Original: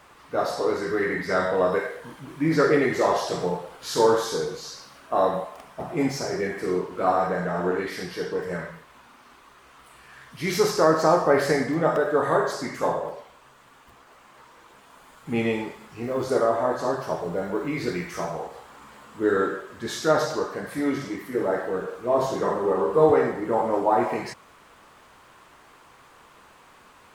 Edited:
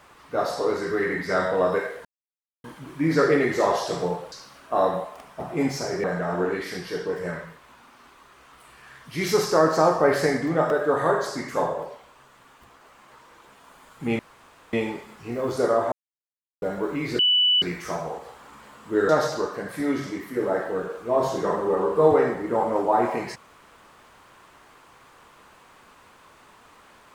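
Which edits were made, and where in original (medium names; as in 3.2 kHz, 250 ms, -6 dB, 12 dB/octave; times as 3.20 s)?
2.05 s: insert silence 0.59 s
3.73–4.72 s: delete
6.44–7.30 s: delete
15.45 s: insert room tone 0.54 s
16.64–17.34 s: mute
17.91 s: add tone 2.97 kHz -16 dBFS 0.43 s
19.38–20.07 s: delete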